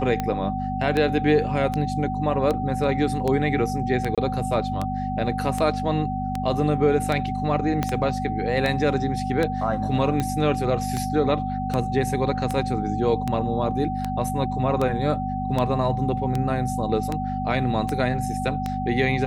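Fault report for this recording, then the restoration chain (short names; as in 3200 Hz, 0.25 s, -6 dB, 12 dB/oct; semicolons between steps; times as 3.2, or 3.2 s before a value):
hum 50 Hz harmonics 5 -29 dBFS
tick 78 rpm -12 dBFS
tone 760 Hz -28 dBFS
4.15–4.18 gap 26 ms
7.83 pop -9 dBFS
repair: de-click; de-hum 50 Hz, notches 5; notch 760 Hz, Q 30; interpolate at 4.15, 26 ms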